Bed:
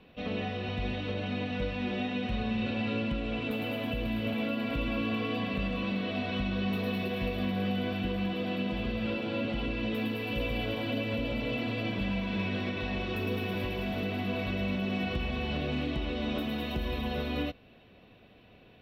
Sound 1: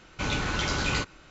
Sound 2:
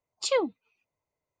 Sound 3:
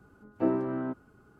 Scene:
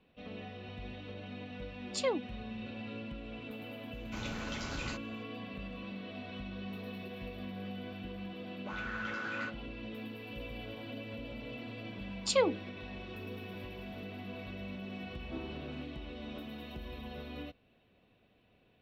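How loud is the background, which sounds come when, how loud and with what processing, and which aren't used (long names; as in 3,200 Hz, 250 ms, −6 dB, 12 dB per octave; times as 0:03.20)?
bed −11.5 dB
0:01.72: mix in 2 −7 dB
0:03.93: mix in 1 −13 dB
0:08.46: mix in 1 −4 dB + envelope filter 260–1,500 Hz, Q 3.5, up, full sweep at −25.5 dBFS
0:12.04: mix in 2 −2 dB + hum removal 62.99 Hz, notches 9
0:14.90: mix in 3 −17.5 dB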